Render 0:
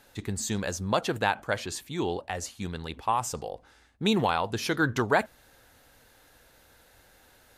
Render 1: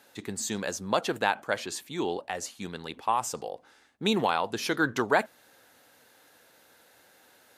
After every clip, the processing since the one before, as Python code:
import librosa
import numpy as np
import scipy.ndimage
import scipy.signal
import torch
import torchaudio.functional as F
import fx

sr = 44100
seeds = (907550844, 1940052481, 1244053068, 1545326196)

y = scipy.signal.sosfilt(scipy.signal.butter(2, 200.0, 'highpass', fs=sr, output='sos'), x)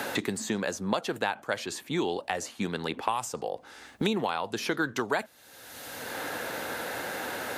y = fx.band_squash(x, sr, depth_pct=100)
y = y * librosa.db_to_amplitude(-1.5)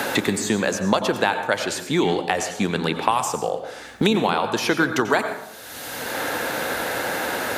y = fx.rev_plate(x, sr, seeds[0], rt60_s=0.79, hf_ratio=0.55, predelay_ms=80, drr_db=7.5)
y = y * librosa.db_to_amplitude(8.5)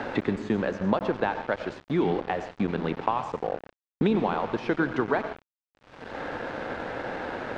y = np.where(np.abs(x) >= 10.0 ** (-26.0 / 20.0), x, 0.0)
y = fx.spacing_loss(y, sr, db_at_10k=40)
y = y * librosa.db_to_amplitude(-2.5)